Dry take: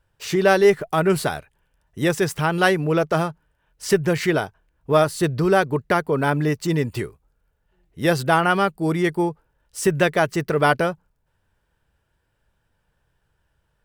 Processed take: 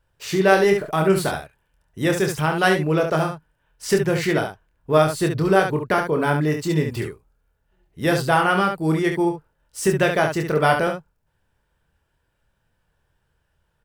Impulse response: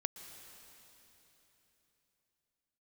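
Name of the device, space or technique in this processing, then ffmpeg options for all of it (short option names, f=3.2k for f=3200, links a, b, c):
slapback doubling: -filter_complex "[0:a]asplit=3[a][b][c];[b]adelay=26,volume=-6dB[d];[c]adelay=70,volume=-6.5dB[e];[a][d][e]amix=inputs=3:normalize=0,volume=-1.5dB"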